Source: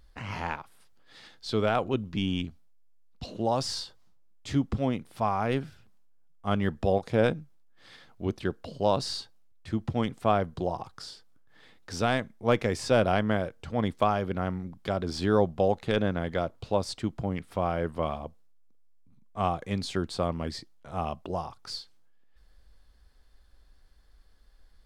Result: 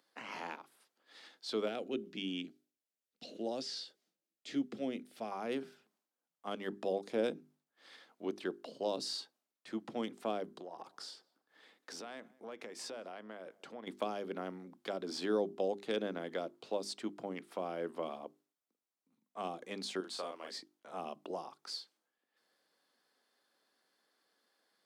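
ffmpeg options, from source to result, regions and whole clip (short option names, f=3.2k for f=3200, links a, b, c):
-filter_complex "[0:a]asettb=1/sr,asplit=3[a][b][c];[a]atrim=end=1.684[d];[b]atrim=start=1.68:end=5.32,asetpts=PTS-STARTPTS,afade=t=in:d=0.004:c=qsin,afade=t=out:st=3.636:d=0.004:c=qsin,acrossover=split=5500[e][f];[f]acompressor=threshold=-55dB:ratio=4:attack=1:release=60[g];[e][g]amix=inputs=2:normalize=0,equalizer=f=1k:w=1.9:g=-14[h];[c]atrim=start=5.316[i];[d][h]acrossfade=d=0.004:c1=hsin:c2=qsin[j];[j][i]acrossfade=d=0.004:c1=qsin:c2=hsin,asettb=1/sr,asplit=3[k][l][m];[k]atrim=end=10.574[n];[l]atrim=start=10.57:end=13.87,asetpts=PTS-STARTPTS,afade=t=in:d=0.004:c=qsin,afade=t=out:st=3.296:d=0.004:c=qsin,acompressor=threshold=-35dB:ratio=12:attack=3.2:release=140:knee=1:detection=peak,asplit=2[o][p];[p]adelay=197,lowpass=f=1.4k:p=1,volume=-22dB,asplit=2[q][r];[r]adelay=197,lowpass=f=1.4k:p=1,volume=0.43,asplit=2[s][t];[t]adelay=197,lowpass=f=1.4k:p=1,volume=0.43[u];[o][q][s][u]amix=inputs=4:normalize=0,atrim=end_sample=145530[v];[m]atrim=start=13.866[w];[n][v]acrossfade=d=0.004:c1=hsin:c2=qsin[x];[x][w]acrossfade=d=0.004:c1=qsin:c2=hsin,asettb=1/sr,asplit=3[y][z][aa];[y]atrim=end=20.004[ab];[z]atrim=start=20:end=20.51,asetpts=PTS-STARTPTS,afade=t=in:d=0.004:c=qsin,afade=t=out:st=0.506:d=0.004:c=qsin,highpass=f=1k:p=1,asplit=2[ac][ad];[ad]adelay=39,volume=-3.5dB[ae];[ac][ae]amix=inputs=2:normalize=0,atrim=end_sample=22491[af];[aa]atrim=start=20.506[ag];[ab][af]acrossfade=d=0.004:c1=hsin:c2=qsin[ah];[ah][ag]acrossfade=d=0.004:c1=qsin:c2=hsin,highpass=f=250:w=0.5412,highpass=f=250:w=1.3066,bandreject=f=50:t=h:w=6,bandreject=f=100:t=h:w=6,bandreject=f=150:t=h:w=6,bandreject=f=200:t=h:w=6,bandreject=f=250:t=h:w=6,bandreject=f=300:t=h:w=6,bandreject=f=350:t=h:w=6,bandreject=f=400:t=h:w=6,acrossover=split=500|3000[ai][aj][ak];[aj]acompressor=threshold=-37dB:ratio=6[al];[ai][al][ak]amix=inputs=3:normalize=0,volume=-5dB"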